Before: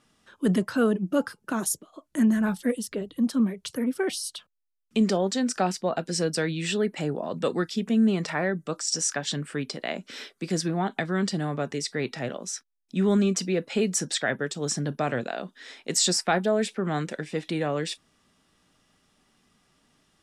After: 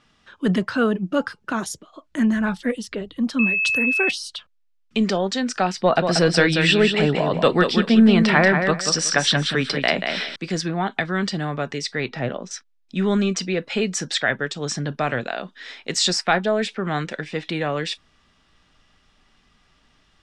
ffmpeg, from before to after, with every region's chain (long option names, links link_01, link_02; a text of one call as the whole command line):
ffmpeg -i in.wav -filter_complex "[0:a]asettb=1/sr,asplit=3[link_01][link_02][link_03];[link_01]atrim=end=3.394[link_04];[link_02]atrim=start=3.39:end=4.11,asetpts=PTS-STARTPTS,afade=type=in:duration=0.004:curve=qsin,afade=type=out:start_time=0.716:duration=0.004:curve=qsin,aeval=exprs='val(0)+0.0398*sin(2*PI*2600*n/s)':channel_layout=same,aemphasis=mode=production:type=50kf[link_05];[link_03]atrim=start=4.106[link_06];[link_04][link_05]acrossfade=duration=0.004:curve1=hsin:curve2=qsin[link_07];[link_07][link_06]acrossfade=duration=0.004:curve1=qsin:curve2=hsin,asettb=1/sr,asplit=3[link_08][link_09][link_10];[link_08]atrim=end=5.774[link_11];[link_09]atrim=start=5.77:end=10.36,asetpts=PTS-STARTPTS,afade=type=in:duration=0.004:curve=qsin,afade=type=out:start_time=4.586:duration=0.004:curve=qsin,equalizer=frequency=6700:width=4.7:gain=-11,acontrast=58,aecho=1:1:185|370|555:0.501|0.11|0.0243,atrim=end_sample=202419[link_12];[link_10]atrim=start=10.356[link_13];[link_11][link_12]acrossfade=duration=0.004:curve1=hsin:curve2=qsin[link_14];[link_14][link_13]acrossfade=duration=0.004:curve1=qsin:curve2=hsin,asettb=1/sr,asplit=3[link_15][link_16][link_17];[link_15]atrim=end=12.084[link_18];[link_16]atrim=start=12.08:end=12.51,asetpts=PTS-STARTPTS,afade=type=in:duration=0.004:curve=qsin,afade=type=out:start_time=0.426:duration=0.004:curve=qsin,lowpass=7000,deesser=0.9,tiltshelf=frequency=1200:gain=4.5[link_19];[link_17]atrim=start=12.506[link_20];[link_18][link_19]acrossfade=duration=0.004:curve1=hsin:curve2=qsin[link_21];[link_21][link_20]acrossfade=duration=0.004:curve1=qsin:curve2=hsin,asubboost=boost=2:cutoff=78,lowpass=4400,equalizer=frequency=340:width=0.42:gain=-6.5,volume=8.5dB" out.wav